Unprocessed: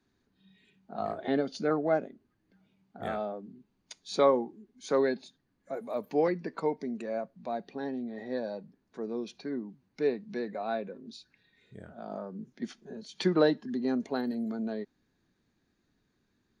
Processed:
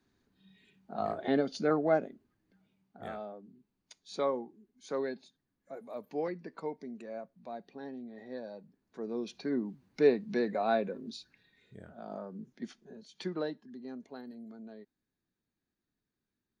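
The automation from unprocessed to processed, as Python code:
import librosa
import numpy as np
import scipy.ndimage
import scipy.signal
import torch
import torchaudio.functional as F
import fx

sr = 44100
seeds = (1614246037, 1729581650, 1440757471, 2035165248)

y = fx.gain(x, sr, db=fx.line((2.09, 0.0), (3.22, -8.0), (8.53, -8.0), (9.65, 4.0), (11.0, 4.0), (11.78, -3.0), (12.48, -3.0), (13.69, -14.0)))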